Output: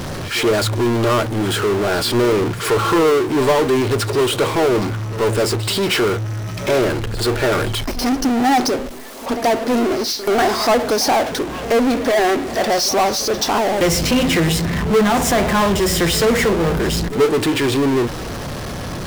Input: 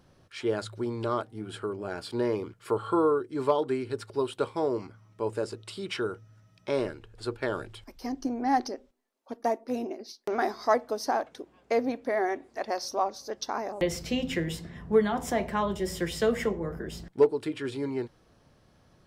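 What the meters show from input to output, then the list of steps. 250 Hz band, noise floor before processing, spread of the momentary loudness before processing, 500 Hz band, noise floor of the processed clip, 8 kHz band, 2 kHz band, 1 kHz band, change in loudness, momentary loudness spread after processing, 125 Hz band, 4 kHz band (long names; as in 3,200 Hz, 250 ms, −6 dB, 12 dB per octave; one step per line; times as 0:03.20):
+14.0 dB, −63 dBFS, 12 LU, +11.5 dB, −27 dBFS, +20.5 dB, +16.0 dB, +12.0 dB, +13.0 dB, 6 LU, +18.0 dB, +19.5 dB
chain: power curve on the samples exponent 0.35
echo ahead of the sound 82 ms −15 dB
level +2.5 dB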